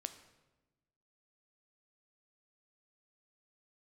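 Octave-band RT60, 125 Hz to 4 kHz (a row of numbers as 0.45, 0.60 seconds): 1.5, 1.5, 1.2, 1.0, 0.90, 0.80 seconds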